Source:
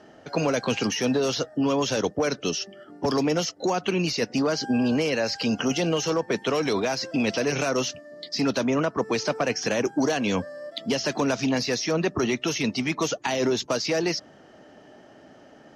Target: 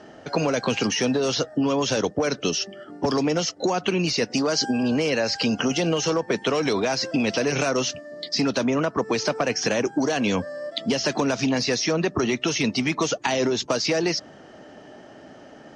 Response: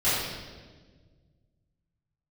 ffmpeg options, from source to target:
-filter_complex "[0:a]acompressor=threshold=-24dB:ratio=6,asettb=1/sr,asplit=3[link_01][link_02][link_03];[link_01]atrim=end=4.304[link_04];[link_02]atrim=start=4.3:end=4.83,asetpts=PTS-STARTPTS,afade=type=in:duration=0.004:curve=qsin,afade=type=out:start_time=0.526:duration=0.004:curve=qsin,bass=frequency=250:gain=-3,treble=frequency=4000:gain=6[link_05];[link_03]atrim=start=4.826[link_06];[link_04][link_05]acrossfade=duration=0.004:curve1=hsin:curve2=qsin[link_07];[link_07][link_06]acrossfade=duration=0.004:curve1=qsin:curve2=hsin,volume=5.5dB" -ar 22050 -c:a libmp3lame -b:a 96k

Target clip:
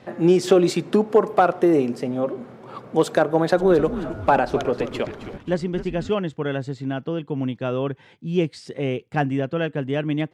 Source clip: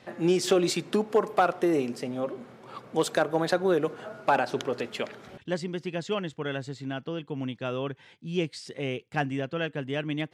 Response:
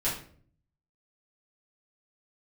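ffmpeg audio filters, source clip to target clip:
-filter_complex "[0:a]tiltshelf=frequency=1500:gain=4.5,asplit=3[link_01][link_02][link_03];[link_01]afade=type=out:start_time=3.57:duration=0.02[link_04];[link_02]asplit=6[link_05][link_06][link_07][link_08][link_09][link_10];[link_06]adelay=265,afreqshift=-140,volume=-12dB[link_11];[link_07]adelay=530,afreqshift=-280,volume=-18.7dB[link_12];[link_08]adelay=795,afreqshift=-420,volume=-25.5dB[link_13];[link_09]adelay=1060,afreqshift=-560,volume=-32.2dB[link_14];[link_10]adelay=1325,afreqshift=-700,volume=-39dB[link_15];[link_05][link_11][link_12][link_13][link_14][link_15]amix=inputs=6:normalize=0,afade=type=in:start_time=3.57:duration=0.02,afade=type=out:start_time=6.1:duration=0.02[link_16];[link_03]afade=type=in:start_time=6.1:duration=0.02[link_17];[link_04][link_16][link_17]amix=inputs=3:normalize=0,volume=3.5dB"

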